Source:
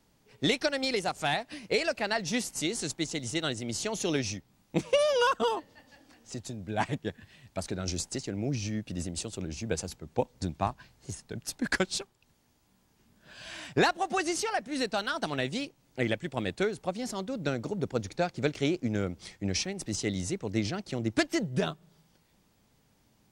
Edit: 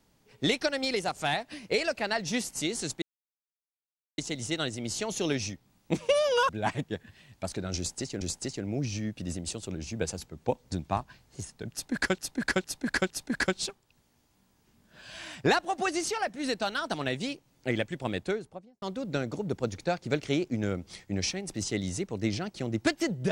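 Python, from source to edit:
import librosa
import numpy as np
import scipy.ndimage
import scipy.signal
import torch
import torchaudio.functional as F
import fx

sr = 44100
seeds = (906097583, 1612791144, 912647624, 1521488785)

y = fx.studio_fade_out(x, sr, start_s=16.45, length_s=0.69)
y = fx.edit(y, sr, fx.insert_silence(at_s=3.02, length_s=1.16),
    fx.cut(start_s=5.33, length_s=1.3),
    fx.repeat(start_s=7.91, length_s=0.44, count=2),
    fx.repeat(start_s=11.42, length_s=0.46, count=4), tone=tone)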